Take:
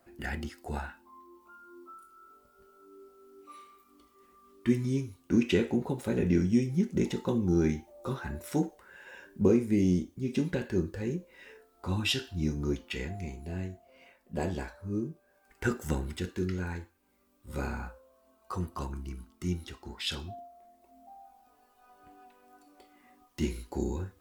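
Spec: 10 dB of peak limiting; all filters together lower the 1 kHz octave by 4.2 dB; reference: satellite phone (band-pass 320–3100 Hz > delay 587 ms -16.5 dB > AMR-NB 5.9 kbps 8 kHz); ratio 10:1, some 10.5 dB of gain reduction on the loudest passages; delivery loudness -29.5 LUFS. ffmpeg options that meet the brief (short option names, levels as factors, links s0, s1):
-af "equalizer=f=1000:t=o:g=-5.5,acompressor=threshold=0.0316:ratio=10,alimiter=level_in=2:limit=0.0631:level=0:latency=1,volume=0.501,highpass=320,lowpass=3100,aecho=1:1:587:0.15,volume=8.91" -ar 8000 -c:a libopencore_amrnb -b:a 5900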